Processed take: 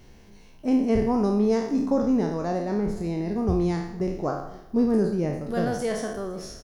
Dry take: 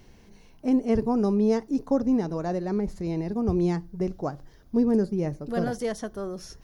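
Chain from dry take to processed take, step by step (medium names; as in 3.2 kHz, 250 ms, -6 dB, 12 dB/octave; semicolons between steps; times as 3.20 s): spectral sustain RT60 0.71 s; delay 511 ms -22.5 dB; spring tank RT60 1.2 s, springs 53 ms, DRR 16.5 dB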